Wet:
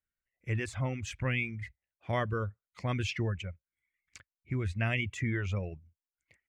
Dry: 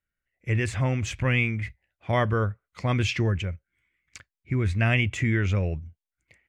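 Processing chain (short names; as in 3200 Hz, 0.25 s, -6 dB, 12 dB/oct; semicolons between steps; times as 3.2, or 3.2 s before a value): reverb removal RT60 0.67 s; gain -7 dB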